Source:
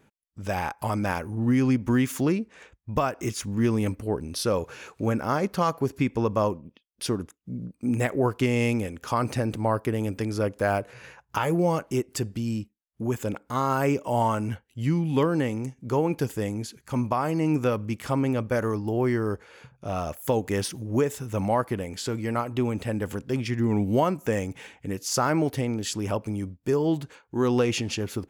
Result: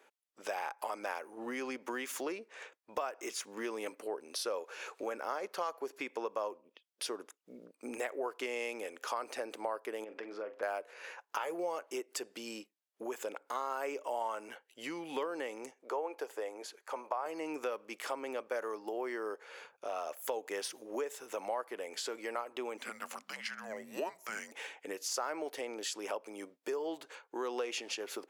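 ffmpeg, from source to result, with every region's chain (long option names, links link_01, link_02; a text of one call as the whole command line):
ffmpeg -i in.wav -filter_complex "[0:a]asettb=1/sr,asplit=3[link_01][link_02][link_03];[link_01]atrim=end=10.044[link_04];[link_02]atrim=start=10.04:end=10.63,asetpts=PTS-STARTPTS,afade=type=in:duration=0.004:curve=qsin,afade=type=out:start_time=0.586:duration=0.004:curve=qsin,lowpass=2300,acompressor=threshold=-34dB:ratio=3:attack=3.2:release=140:knee=1:detection=peak,asplit=2[link_05][link_06];[link_06]adelay=43,volume=-11dB[link_07];[link_05][link_07]amix=inputs=2:normalize=0,atrim=end_sample=26019[link_08];[link_03]atrim=start=10.626[link_09];[link_04][link_08]acrossfade=duration=0.004:curve1=hsin:curve2=qsin[link_10];[link_10][link_09]acrossfade=duration=0.004:curve1=qsin:curve2=hsin,asettb=1/sr,asplit=3[link_11][link_12][link_13];[link_11]atrim=end=15.714[link_14];[link_12]atrim=start=15.71:end=17.26,asetpts=PTS-STARTPTS,afade=type=in:duration=0.004:curve=qsin,afade=type=out:start_time=1.546:duration=0.004:curve=qsin,highpass=580,tiltshelf=frequency=1300:gain=7.5[link_15];[link_13]atrim=start=17.256[link_16];[link_14][link_15]acrossfade=duration=0.004:curve1=hsin:curve2=qsin[link_17];[link_17][link_16]acrossfade=duration=0.004:curve1=qsin:curve2=hsin,asettb=1/sr,asplit=3[link_18][link_19][link_20];[link_18]atrim=end=22.774[link_21];[link_19]atrim=start=22.77:end=24.52,asetpts=PTS-STARTPTS,afade=type=in:duration=0.004:curve=qsin,afade=type=out:start_time=1.746:duration=0.004:curve=qsin,equalizer=frequency=260:width=0.81:gain=-6,afreqshift=-330[link_22];[link_20]atrim=start=24.516[link_23];[link_21][link_22]acrossfade=duration=0.004:curve1=hsin:curve2=qsin[link_24];[link_24][link_23]acrossfade=duration=0.004:curve1=qsin:curve2=hsin,highpass=frequency=420:width=0.5412,highpass=frequency=420:width=1.3066,highshelf=frequency=8300:gain=-4,acompressor=threshold=-40dB:ratio=2.5,volume=1dB" out.wav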